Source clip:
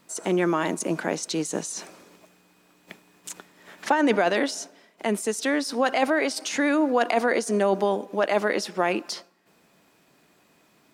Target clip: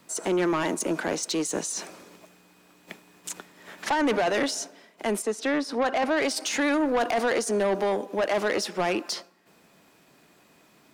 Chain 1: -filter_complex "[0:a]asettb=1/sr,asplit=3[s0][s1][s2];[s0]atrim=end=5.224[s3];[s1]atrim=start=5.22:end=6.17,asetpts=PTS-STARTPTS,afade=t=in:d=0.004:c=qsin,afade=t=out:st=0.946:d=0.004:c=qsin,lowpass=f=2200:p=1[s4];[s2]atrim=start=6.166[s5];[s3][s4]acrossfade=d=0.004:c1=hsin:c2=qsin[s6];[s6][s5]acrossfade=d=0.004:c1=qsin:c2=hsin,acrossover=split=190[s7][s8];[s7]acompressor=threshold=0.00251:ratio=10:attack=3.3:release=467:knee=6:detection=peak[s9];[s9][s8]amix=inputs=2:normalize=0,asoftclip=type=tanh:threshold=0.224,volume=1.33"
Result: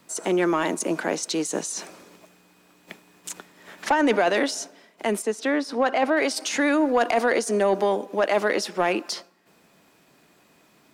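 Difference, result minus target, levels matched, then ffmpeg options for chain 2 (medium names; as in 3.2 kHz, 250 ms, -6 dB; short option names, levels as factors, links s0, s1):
saturation: distortion -11 dB
-filter_complex "[0:a]asettb=1/sr,asplit=3[s0][s1][s2];[s0]atrim=end=5.224[s3];[s1]atrim=start=5.22:end=6.17,asetpts=PTS-STARTPTS,afade=t=in:d=0.004:c=qsin,afade=t=out:st=0.946:d=0.004:c=qsin,lowpass=f=2200:p=1[s4];[s2]atrim=start=6.166[s5];[s3][s4]acrossfade=d=0.004:c1=hsin:c2=qsin[s6];[s6][s5]acrossfade=d=0.004:c1=qsin:c2=hsin,acrossover=split=190[s7][s8];[s7]acompressor=threshold=0.00251:ratio=10:attack=3.3:release=467:knee=6:detection=peak[s9];[s9][s8]amix=inputs=2:normalize=0,asoftclip=type=tanh:threshold=0.0794,volume=1.33"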